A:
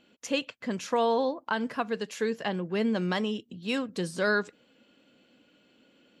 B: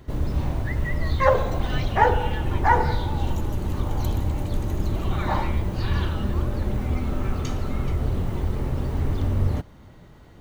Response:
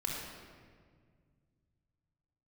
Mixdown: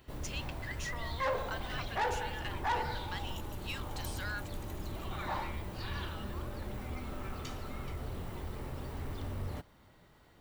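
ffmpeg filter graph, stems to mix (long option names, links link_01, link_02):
-filter_complex "[0:a]acompressor=threshold=-28dB:ratio=6,highpass=1200,volume=-3dB[link_01];[1:a]highshelf=frequency=10000:gain=5,bandreject=frequency=6400:width=13,volume=-7dB[link_02];[link_01][link_02]amix=inputs=2:normalize=0,lowshelf=frequency=450:gain=-9.5,asoftclip=type=tanh:threshold=-27dB"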